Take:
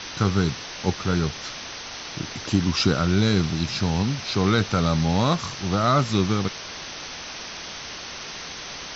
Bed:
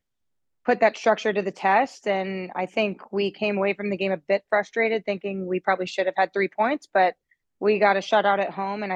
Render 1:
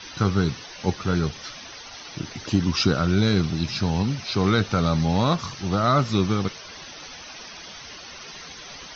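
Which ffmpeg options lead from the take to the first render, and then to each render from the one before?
-af "afftdn=nr=11:nf=-36"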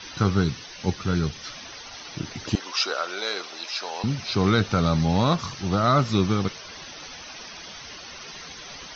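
-filter_complex "[0:a]asettb=1/sr,asplit=3[a][b][c];[a]atrim=end=0.434[d];[b]atrim=start=0.43:end=1.47,asetpts=PTS-STARTPTS,afade=t=in:d=0.004:c=qsin,afade=t=out:st=1.036:d=0.004:c=qsin,equalizer=f=720:w=0.61:g=-4[e];[c]atrim=start=1.466[f];[d][e]acrossfade=d=0.004:c1=hsin:c2=qsin[g];[g][f]acrossfade=d=0.004:c1=qsin:c2=hsin,asettb=1/sr,asplit=3[h][i][j];[h]atrim=end=2.554[k];[i]atrim=start=2.55:end=4.04,asetpts=PTS-STARTPTS,afade=t=in:d=0.004:c=qsin,afade=t=out:st=1.486:d=0.004:c=qsin,highpass=f=500:w=0.5412,highpass=f=500:w=1.3066[l];[j]atrim=start=4.036[m];[k][l]acrossfade=d=0.004:c1=hsin:c2=qsin[n];[n][m]acrossfade=d=0.004:c1=qsin:c2=hsin"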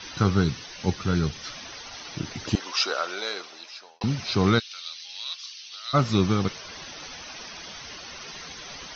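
-filter_complex "[0:a]asplit=3[a][b][c];[a]afade=t=out:st=4.58:d=0.02[d];[b]asuperpass=centerf=4000:order=4:qfactor=1.3,afade=t=in:st=4.58:d=0.02,afade=t=out:st=5.93:d=0.02[e];[c]afade=t=in:st=5.93:d=0.02[f];[d][e][f]amix=inputs=3:normalize=0,asplit=2[g][h];[g]atrim=end=4.01,asetpts=PTS-STARTPTS,afade=t=out:st=3.04:d=0.97[i];[h]atrim=start=4.01,asetpts=PTS-STARTPTS,afade=t=in:d=0.004:c=hsin[j];[i][j]concat=n=2:v=0:a=1"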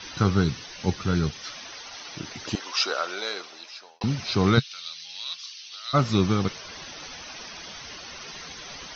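-filter_complex "[0:a]asettb=1/sr,asplit=3[a][b][c];[a]atrim=end=1.304[d];[b]atrim=start=1.3:end=2.76,asetpts=PTS-STARTPTS,afade=t=in:d=0.004:c=qsin,afade=t=out:st=1.456:d=0.004:c=qsin,lowshelf=f=240:g=-9[e];[c]atrim=start=2.756[f];[d][e]acrossfade=d=0.004:c1=hsin:c2=qsin[g];[g][f]acrossfade=d=0.004:c1=qsin:c2=hsin,asettb=1/sr,asplit=3[h][i][j];[h]atrim=end=4.574[k];[i]atrim=start=4.57:end=5.59,asetpts=PTS-STARTPTS,afade=t=in:d=0.004:c=qsin,afade=t=out:st=1.016:d=0.004:c=qsin,equalizer=f=140:w=1.5:g=13.5[l];[j]atrim=start=5.586[m];[k][l]acrossfade=d=0.004:c1=hsin:c2=qsin[n];[n][m]acrossfade=d=0.004:c1=qsin:c2=hsin"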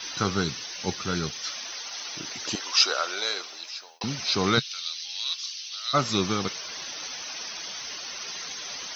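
-af "aemphasis=mode=production:type=bsi"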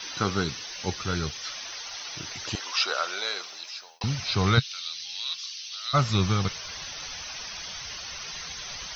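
-filter_complex "[0:a]asubboost=boost=11:cutoff=88,acrossover=split=4200[a][b];[b]acompressor=threshold=-38dB:ratio=4:attack=1:release=60[c];[a][c]amix=inputs=2:normalize=0"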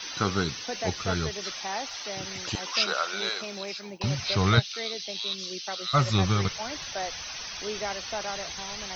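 -filter_complex "[1:a]volume=-14.5dB[a];[0:a][a]amix=inputs=2:normalize=0"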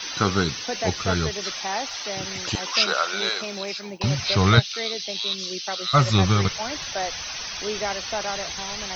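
-af "volume=5dB"

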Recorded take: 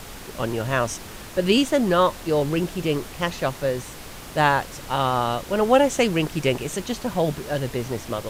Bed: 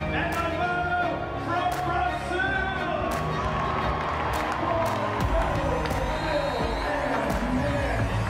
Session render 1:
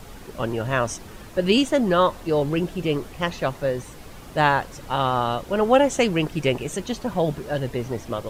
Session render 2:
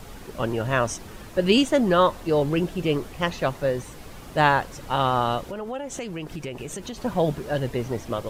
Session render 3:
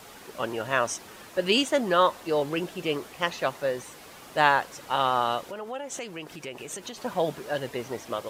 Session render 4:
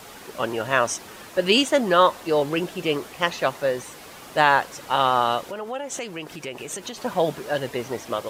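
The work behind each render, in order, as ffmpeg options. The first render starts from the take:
-af "afftdn=nr=8:nf=-39"
-filter_complex "[0:a]asettb=1/sr,asplit=3[a][b][c];[a]atrim=end=5.404[d];[b]atrim=start=5.4:end=6.98,asetpts=PTS-STARTPTS,afade=t=in:d=0.004:c=qsin,afade=t=out:st=1.576:d=0.004:c=qsin,acompressor=threshold=-30dB:ratio=5:attack=3.2:release=140:knee=1:detection=peak[e];[c]atrim=start=6.976[f];[d][e]acrossfade=d=0.004:c1=hsin:c2=qsin[g];[g][f]acrossfade=d=0.004:c1=qsin:c2=hsin"
-af "highpass=f=580:p=1"
-af "volume=4.5dB,alimiter=limit=-3dB:level=0:latency=1"

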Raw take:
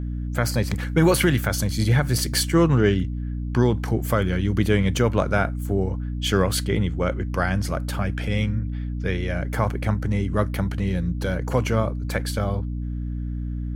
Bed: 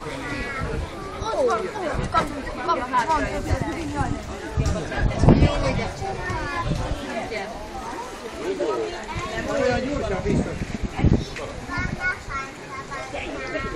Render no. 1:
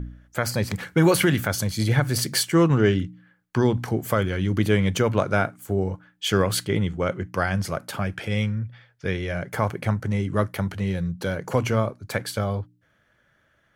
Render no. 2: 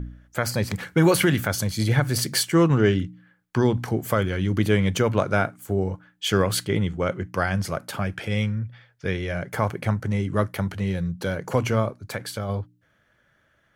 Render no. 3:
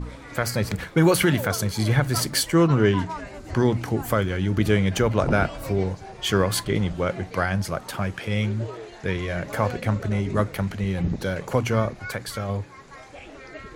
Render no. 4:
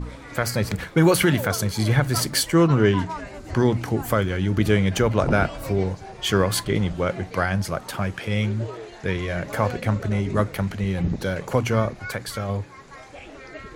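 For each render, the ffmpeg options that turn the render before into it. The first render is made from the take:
-af "bandreject=f=60:t=h:w=4,bandreject=f=120:t=h:w=4,bandreject=f=180:t=h:w=4,bandreject=f=240:t=h:w=4,bandreject=f=300:t=h:w=4"
-filter_complex "[0:a]asplit=3[a][b][c];[a]afade=t=out:st=11.94:d=0.02[d];[b]acompressor=threshold=-32dB:ratio=1.5:attack=3.2:release=140:knee=1:detection=peak,afade=t=in:st=11.94:d=0.02,afade=t=out:st=12.48:d=0.02[e];[c]afade=t=in:st=12.48:d=0.02[f];[d][e][f]amix=inputs=3:normalize=0"
-filter_complex "[1:a]volume=-12dB[a];[0:a][a]amix=inputs=2:normalize=0"
-af "volume=1dB"

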